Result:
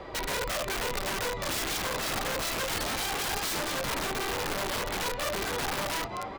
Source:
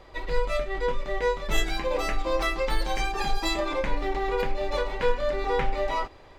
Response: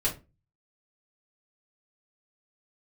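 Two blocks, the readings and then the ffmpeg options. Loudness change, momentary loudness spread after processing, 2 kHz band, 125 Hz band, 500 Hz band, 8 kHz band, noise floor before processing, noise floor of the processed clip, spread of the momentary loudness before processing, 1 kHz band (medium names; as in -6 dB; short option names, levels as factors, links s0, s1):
-2.0 dB, 2 LU, -0.5 dB, -3.5 dB, -7.5 dB, +9.5 dB, -49 dBFS, -37 dBFS, 3 LU, -3.0 dB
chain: -filter_complex "[0:a]equalizer=f=140:w=0.34:g=12,acompressor=threshold=0.0501:ratio=2,asplit=5[s0][s1][s2][s3][s4];[s1]adelay=213,afreqshift=88,volume=0.224[s5];[s2]adelay=426,afreqshift=176,volume=0.0832[s6];[s3]adelay=639,afreqshift=264,volume=0.0305[s7];[s4]adelay=852,afreqshift=352,volume=0.0114[s8];[s0][s5][s6][s7][s8]amix=inputs=5:normalize=0,asplit=2[s9][s10];[s10]highpass=f=720:p=1,volume=5.01,asoftclip=type=tanh:threshold=0.211[s11];[s9][s11]amix=inputs=2:normalize=0,lowpass=f=2700:p=1,volume=0.501,acrossover=split=150|3000[s12][s13][s14];[s13]acompressor=threshold=0.0316:ratio=6[s15];[s12][s15][s14]amix=inputs=3:normalize=0,aeval=exprs='(mod(20*val(0)+1,2)-1)/20':c=same"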